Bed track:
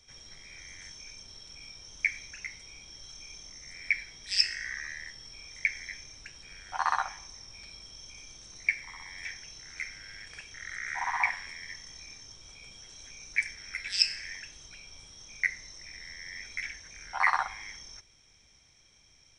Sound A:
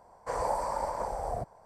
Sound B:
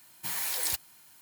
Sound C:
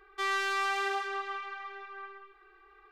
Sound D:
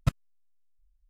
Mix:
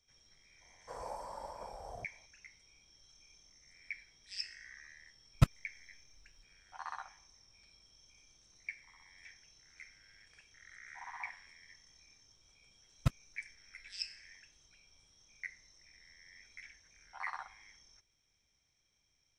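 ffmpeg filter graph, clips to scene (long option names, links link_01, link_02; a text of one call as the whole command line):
ffmpeg -i bed.wav -i cue0.wav -i cue1.wav -i cue2.wav -i cue3.wav -filter_complex "[4:a]asplit=2[link_01][link_02];[0:a]volume=-16dB[link_03];[link_01]acontrast=71[link_04];[1:a]atrim=end=1.65,asetpts=PTS-STARTPTS,volume=-13.5dB,afade=type=in:duration=0.004:curve=hsin,afade=type=out:start_time=1.646:duration=0.004:curve=hsin,adelay=610[link_05];[link_04]atrim=end=1.09,asetpts=PTS-STARTPTS,volume=-5.5dB,afade=type=in:duration=0.004:curve=hsin,afade=type=out:start_time=1.086:duration=0.004:curve=hsin,adelay=5350[link_06];[link_02]atrim=end=1.09,asetpts=PTS-STARTPTS,volume=-5.5dB,afade=type=in:duration=0.004:curve=hsin,afade=type=out:start_time=1.086:duration=0.004:curve=hsin,adelay=12990[link_07];[link_03][link_05][link_06][link_07]amix=inputs=4:normalize=0" out.wav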